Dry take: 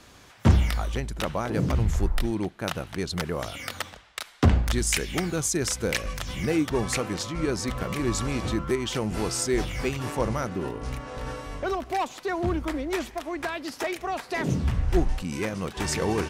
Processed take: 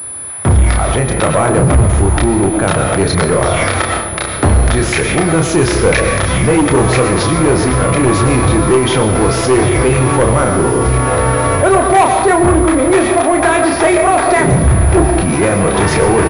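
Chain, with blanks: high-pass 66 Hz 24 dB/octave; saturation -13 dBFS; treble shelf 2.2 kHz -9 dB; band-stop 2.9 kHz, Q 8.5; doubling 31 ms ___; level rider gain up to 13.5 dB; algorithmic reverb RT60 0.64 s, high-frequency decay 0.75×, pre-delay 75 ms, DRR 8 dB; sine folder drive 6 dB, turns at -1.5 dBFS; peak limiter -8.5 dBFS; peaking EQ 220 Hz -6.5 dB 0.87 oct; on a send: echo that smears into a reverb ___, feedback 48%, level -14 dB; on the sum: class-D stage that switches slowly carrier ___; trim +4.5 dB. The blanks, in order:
-5.5 dB, 1469 ms, 10 kHz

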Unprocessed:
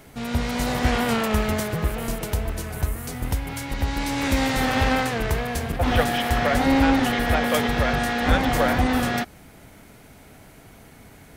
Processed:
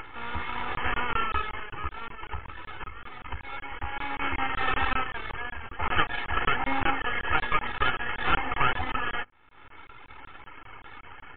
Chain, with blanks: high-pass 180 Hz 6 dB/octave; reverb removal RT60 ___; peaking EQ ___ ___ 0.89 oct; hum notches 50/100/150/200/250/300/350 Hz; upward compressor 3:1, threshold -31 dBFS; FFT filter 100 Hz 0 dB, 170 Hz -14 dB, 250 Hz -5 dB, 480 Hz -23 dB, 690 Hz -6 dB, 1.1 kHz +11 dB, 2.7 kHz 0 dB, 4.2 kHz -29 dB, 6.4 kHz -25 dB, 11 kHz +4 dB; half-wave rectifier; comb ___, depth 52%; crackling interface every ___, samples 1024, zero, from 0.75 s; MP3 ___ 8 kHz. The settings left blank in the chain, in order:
1.7 s, 370 Hz, +8.5 dB, 2.3 ms, 0.19 s, 64 kbps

